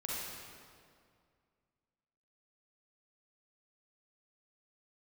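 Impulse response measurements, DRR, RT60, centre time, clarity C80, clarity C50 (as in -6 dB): -6.0 dB, 2.2 s, 0.142 s, -1.0 dB, -4.5 dB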